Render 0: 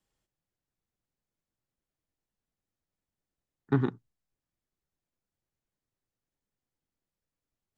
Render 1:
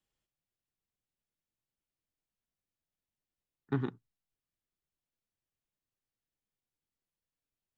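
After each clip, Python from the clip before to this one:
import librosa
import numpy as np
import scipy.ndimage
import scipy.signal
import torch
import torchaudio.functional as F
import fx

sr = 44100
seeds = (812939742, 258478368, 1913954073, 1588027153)

y = fx.peak_eq(x, sr, hz=2900.0, db=4.5, octaves=0.91)
y = y * 10.0 ** (-6.5 / 20.0)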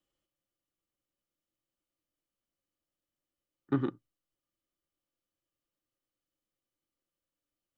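y = fx.small_body(x, sr, hz=(320.0, 540.0, 1200.0, 3000.0), ring_ms=45, db=12)
y = y * 10.0 ** (-1.5 / 20.0)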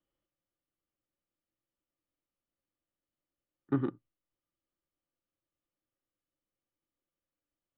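y = fx.air_absorb(x, sr, metres=330.0)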